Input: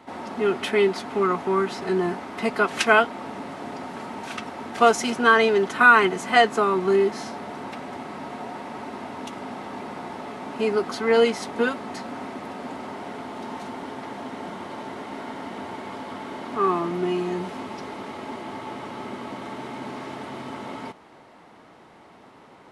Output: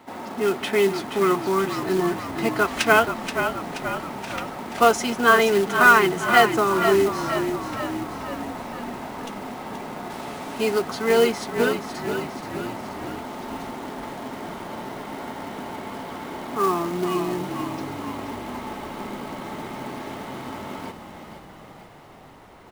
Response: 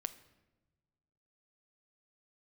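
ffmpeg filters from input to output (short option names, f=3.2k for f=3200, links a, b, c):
-filter_complex "[0:a]asettb=1/sr,asplit=3[a][b][c];[a]atrim=end=10.104[d];[b]atrim=start=10.1:end=10.79,asetpts=PTS-STARTPTS,afade=t=in:d=0.004:c=qsin,afade=t=out:st=0.686:d=0.004:c=qsin,highshelf=f=3.8k:g=11[e];[c]atrim=start=10.786[f];[d][e]acrossfade=d=0.004:c1=hsin:c2=qsin[g];[g][f]acrossfade=d=0.004:c1=qsin:c2=hsin,acrusher=bits=4:mode=log:mix=0:aa=0.000001,asplit=8[h][i][j][k][l][m][n][o];[i]adelay=478,afreqshift=-38,volume=-8dB[p];[j]adelay=956,afreqshift=-76,volume=-12.6dB[q];[k]adelay=1434,afreqshift=-114,volume=-17.2dB[r];[l]adelay=1912,afreqshift=-152,volume=-21.7dB[s];[m]adelay=2390,afreqshift=-190,volume=-26.3dB[t];[n]adelay=2868,afreqshift=-228,volume=-30.9dB[u];[o]adelay=3346,afreqshift=-266,volume=-35.5dB[v];[h][p][q][r][s][t][u][v]amix=inputs=8:normalize=0"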